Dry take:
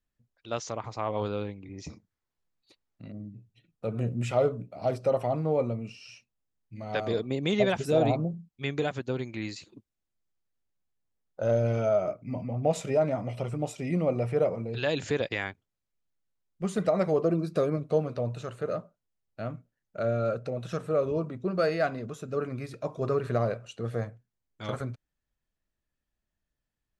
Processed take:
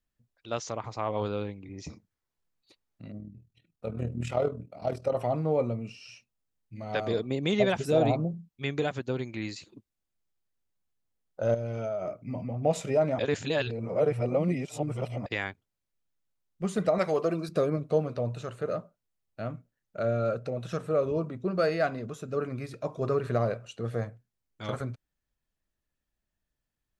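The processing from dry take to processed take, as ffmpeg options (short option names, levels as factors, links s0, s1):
-filter_complex "[0:a]asplit=3[s0][s1][s2];[s0]afade=t=out:st=3.18:d=0.02[s3];[s1]tremolo=f=40:d=0.667,afade=t=in:st=3.18:d=0.02,afade=t=out:st=5.15:d=0.02[s4];[s2]afade=t=in:st=5.15:d=0.02[s5];[s3][s4][s5]amix=inputs=3:normalize=0,asettb=1/sr,asplit=3[s6][s7][s8];[s6]atrim=end=11.544[s9];[s7]atrim=start=11.54:end=12.65,asetpts=PTS-STARTPTS,afade=t=in:d=0.004:c=qsin,afade=t=out:st=1.106:d=0.004:c=qsin,acompressor=threshold=0.0355:ratio=6:attack=3.2:release=140:knee=1:detection=peak[s10];[s8]atrim=start=12.646[s11];[s9][s10]acrossfade=d=0.004:c1=hsin:c2=qsin[s12];[s12][s11]acrossfade=d=0.004:c1=qsin:c2=hsin,asettb=1/sr,asplit=3[s13][s14][s15];[s13]atrim=end=16.984[s16];[s14]atrim=start=16.98:end=17.49,asetpts=PTS-STARTPTS,afade=t=in:d=0.004:c=qsin,afade=t=out:st=0.506:d=0.004:c=qsin,tiltshelf=f=630:g=-6.5[s17];[s15]atrim=start=17.486[s18];[s16][s17]acrossfade=d=0.004:c1=hsin:c2=qsin[s19];[s19][s18]acrossfade=d=0.004:c1=qsin:c2=hsin,asplit=3[s20][s21][s22];[s20]atrim=end=13.192[s23];[s21]atrim=start=13.188:end=15.262,asetpts=PTS-STARTPTS,areverse[s24];[s22]atrim=start=15.258[s25];[s23][s24]acrossfade=d=0.004:c1=hsin:c2=hsin[s26];[s26][s25]acrossfade=d=0.004:c1=hsin:c2=hsin"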